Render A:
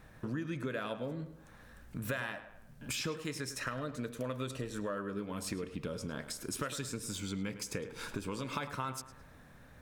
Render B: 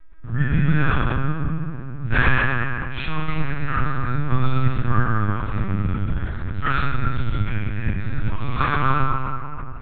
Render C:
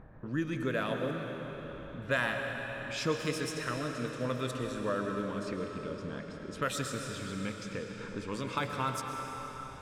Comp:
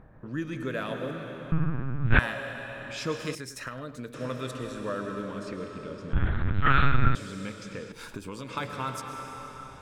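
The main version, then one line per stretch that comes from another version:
C
0:01.52–0:02.19: punch in from B
0:03.35–0:04.14: punch in from A
0:06.13–0:07.15: punch in from B
0:07.92–0:08.49: punch in from A

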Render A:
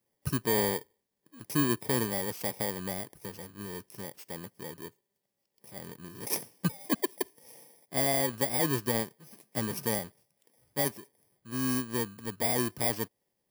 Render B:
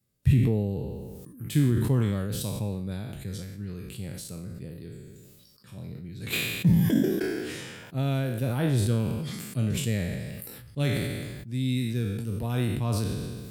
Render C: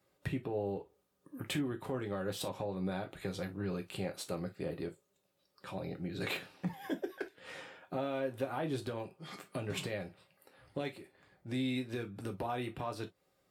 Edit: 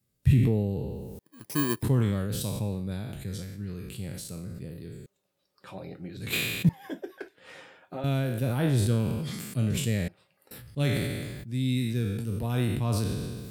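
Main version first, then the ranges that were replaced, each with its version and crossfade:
B
0:01.19–0:01.83: punch in from A
0:05.06–0:06.17: punch in from C
0:06.69–0:08.04: punch in from C
0:10.08–0:10.51: punch in from C

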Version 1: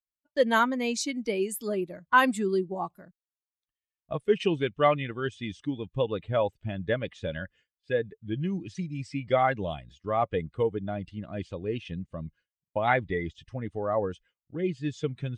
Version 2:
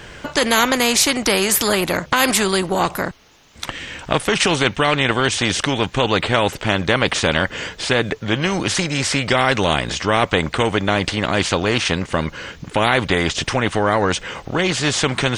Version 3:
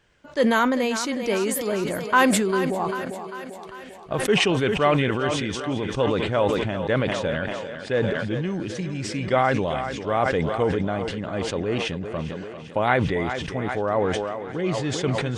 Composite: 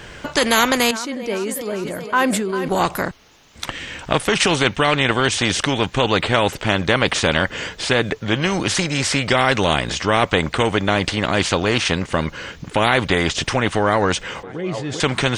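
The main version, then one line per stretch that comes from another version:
2
0:00.91–0:02.68: punch in from 3
0:14.43–0:15.00: punch in from 3
not used: 1

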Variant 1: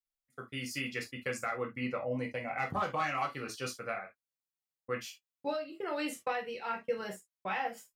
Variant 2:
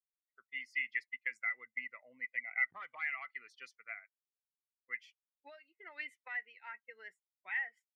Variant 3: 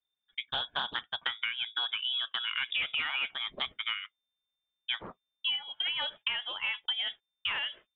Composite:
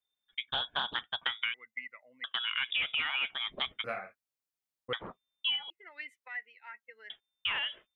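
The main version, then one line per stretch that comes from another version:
3
0:01.54–0:02.24: punch in from 2
0:03.84–0:04.93: punch in from 1
0:05.70–0:07.10: punch in from 2

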